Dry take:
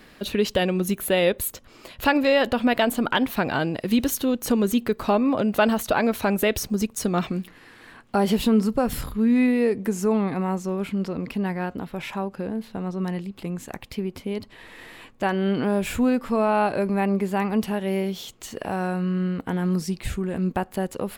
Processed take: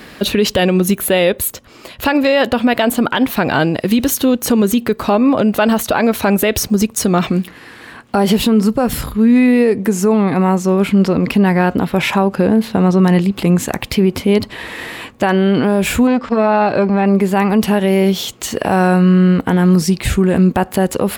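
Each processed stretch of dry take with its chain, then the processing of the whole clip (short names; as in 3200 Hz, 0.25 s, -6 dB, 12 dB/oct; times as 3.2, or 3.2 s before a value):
16.07–17.06 LPF 6400 Hz 24 dB/oct + core saturation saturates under 410 Hz
whole clip: HPF 47 Hz; vocal rider 2 s; maximiser +15 dB; gain -3.5 dB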